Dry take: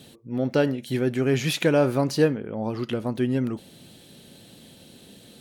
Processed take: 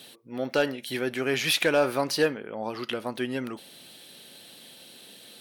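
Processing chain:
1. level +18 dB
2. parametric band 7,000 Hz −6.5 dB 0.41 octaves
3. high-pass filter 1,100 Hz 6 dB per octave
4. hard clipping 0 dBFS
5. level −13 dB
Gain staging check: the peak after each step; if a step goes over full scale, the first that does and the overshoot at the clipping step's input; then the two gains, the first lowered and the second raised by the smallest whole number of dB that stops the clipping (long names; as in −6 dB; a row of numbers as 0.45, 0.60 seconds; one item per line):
+9.0, +9.0, +7.5, 0.0, −13.0 dBFS
step 1, 7.5 dB
step 1 +10 dB, step 5 −5 dB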